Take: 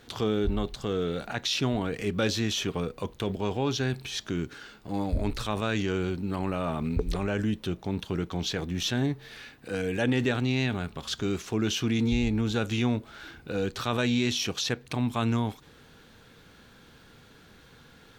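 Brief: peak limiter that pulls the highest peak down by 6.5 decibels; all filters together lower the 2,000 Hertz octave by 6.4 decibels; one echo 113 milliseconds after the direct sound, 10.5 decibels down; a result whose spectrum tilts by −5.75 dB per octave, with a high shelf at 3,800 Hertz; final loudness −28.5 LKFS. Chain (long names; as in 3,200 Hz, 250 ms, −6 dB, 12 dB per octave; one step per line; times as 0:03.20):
parametric band 2,000 Hz −8 dB
high-shelf EQ 3,800 Hz −3.5 dB
brickwall limiter −20 dBFS
single-tap delay 113 ms −10.5 dB
level +2.5 dB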